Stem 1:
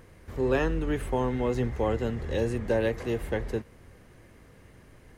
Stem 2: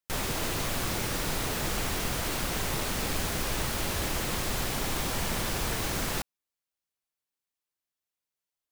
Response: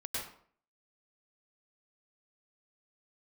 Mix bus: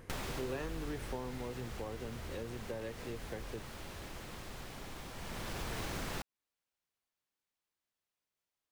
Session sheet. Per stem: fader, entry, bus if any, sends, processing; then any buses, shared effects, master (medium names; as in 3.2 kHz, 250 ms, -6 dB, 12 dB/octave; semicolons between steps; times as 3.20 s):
1.01 s -2 dB -> 1.62 s -12 dB, 0.00 s, no send, none
+2.0 dB, 0.00 s, no send, treble shelf 6 kHz -8.5 dB; auto duck -17 dB, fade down 1.90 s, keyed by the first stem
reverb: none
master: compression 4:1, threshold -38 dBFS, peak gain reduction 13.5 dB